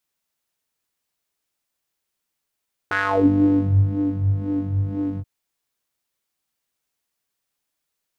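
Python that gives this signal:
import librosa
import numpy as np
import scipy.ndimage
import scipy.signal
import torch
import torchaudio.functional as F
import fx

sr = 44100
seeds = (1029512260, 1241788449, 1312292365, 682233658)

y = fx.sub_patch_wobble(sr, seeds[0], note=43, wave='square', wave2='saw', interval_st=0, level2_db=-9.0, sub_db=-15.0, noise_db=-30.0, kind='bandpass', cutoff_hz=170.0, q=4.9, env_oct=3.0, env_decay_s=0.61, env_sustain_pct=5, attack_ms=3.1, decay_s=1.09, sustain_db=-10.5, release_s=0.05, note_s=2.28, lfo_hz=2.0, wobble_oct=0.7)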